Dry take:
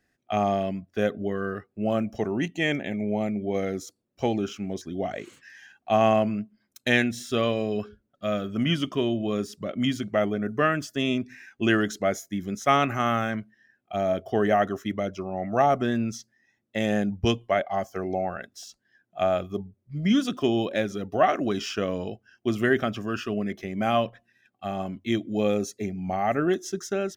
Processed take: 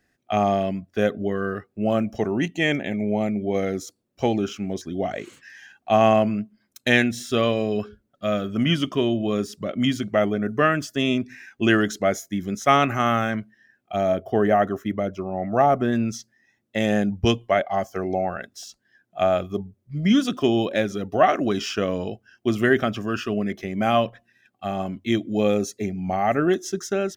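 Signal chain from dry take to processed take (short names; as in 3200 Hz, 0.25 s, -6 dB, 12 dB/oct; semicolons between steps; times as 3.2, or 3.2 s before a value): 14.15–15.93 bell 4900 Hz -8.5 dB 2.1 oct; gain +3.5 dB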